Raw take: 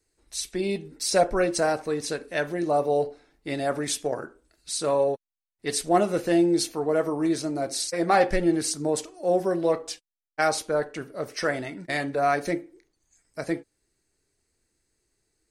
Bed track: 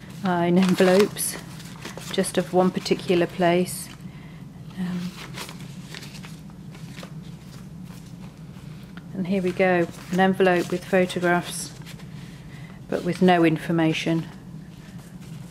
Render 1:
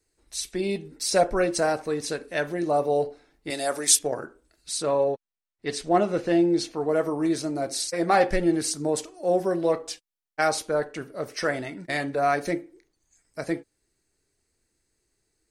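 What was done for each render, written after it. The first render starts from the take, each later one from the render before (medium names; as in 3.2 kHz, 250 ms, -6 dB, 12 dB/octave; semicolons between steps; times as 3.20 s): 3.50–3.99 s: tone controls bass -13 dB, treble +13 dB; 4.82–6.80 s: distance through air 78 m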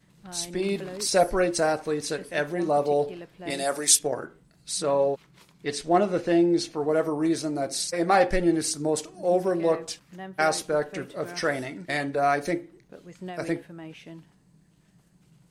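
add bed track -20.5 dB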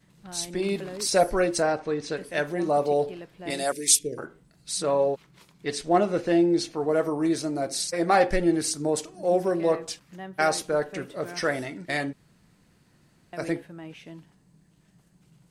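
1.62–2.17 s: distance through air 110 m; 3.72–4.18 s: Chebyshev band-stop 430–2200 Hz, order 3; 12.13–13.33 s: room tone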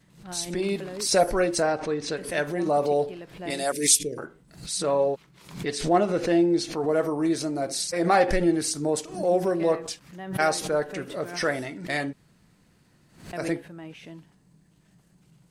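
swell ahead of each attack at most 110 dB/s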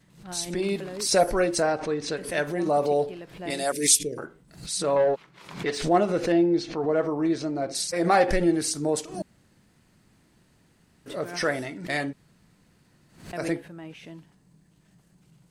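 4.96–5.82 s: overdrive pedal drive 14 dB, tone 1.9 kHz, clips at -13.5 dBFS; 6.32–7.75 s: distance through air 120 m; 9.22–11.06 s: room tone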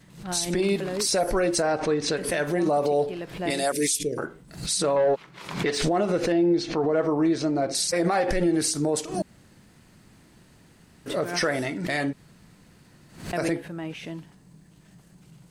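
in parallel at +2 dB: compression, threshold -31 dBFS, peak gain reduction 16 dB; on the sum: peak limiter -15 dBFS, peak gain reduction 10 dB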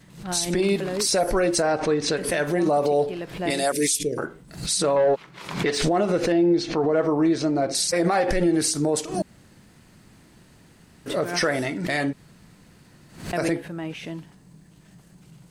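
trim +2 dB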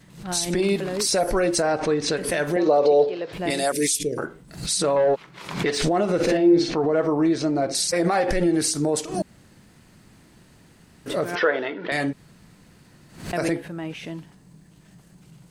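2.56–3.33 s: cabinet simulation 180–5900 Hz, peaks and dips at 200 Hz -10 dB, 490 Hz +10 dB, 4.1 kHz +5 dB; 6.15–6.74 s: doubling 49 ms -2 dB; 11.35–11.92 s: cabinet simulation 370–3400 Hz, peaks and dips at 450 Hz +10 dB, 680 Hz -3 dB, 1 kHz +4 dB, 1.5 kHz +5 dB, 2.2 kHz -4 dB, 3.3 kHz +5 dB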